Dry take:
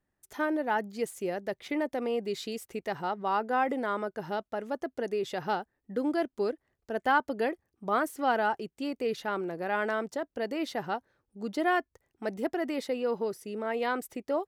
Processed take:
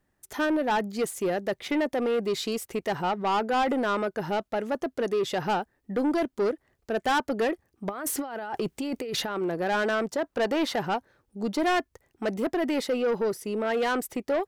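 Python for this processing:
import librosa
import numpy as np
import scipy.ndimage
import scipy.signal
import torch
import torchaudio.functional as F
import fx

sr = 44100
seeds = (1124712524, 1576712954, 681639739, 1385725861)

y = fx.over_compress(x, sr, threshold_db=-39.0, ratio=-1.0, at=(7.89, 9.42))
y = fx.peak_eq(y, sr, hz=1100.0, db=10.5, octaves=1.5, at=(10.24, 10.76))
y = 10.0 ** (-28.5 / 20.0) * np.tanh(y / 10.0 ** (-28.5 / 20.0))
y = F.gain(torch.from_numpy(y), 8.0).numpy()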